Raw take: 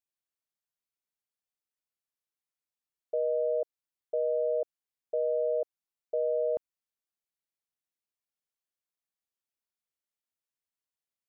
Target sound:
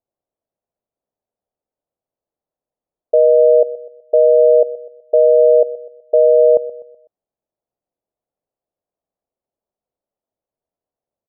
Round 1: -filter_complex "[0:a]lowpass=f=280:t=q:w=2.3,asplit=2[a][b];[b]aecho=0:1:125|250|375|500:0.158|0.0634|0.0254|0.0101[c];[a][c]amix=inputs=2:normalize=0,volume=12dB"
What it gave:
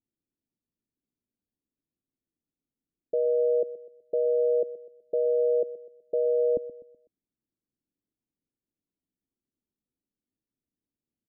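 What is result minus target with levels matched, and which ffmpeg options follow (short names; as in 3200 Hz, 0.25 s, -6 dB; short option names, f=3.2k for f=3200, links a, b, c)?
250 Hz band +12.0 dB
-filter_complex "[0:a]lowpass=f=630:t=q:w=2.3,asplit=2[a][b];[b]aecho=0:1:125|250|375|500:0.158|0.0634|0.0254|0.0101[c];[a][c]amix=inputs=2:normalize=0,volume=12dB"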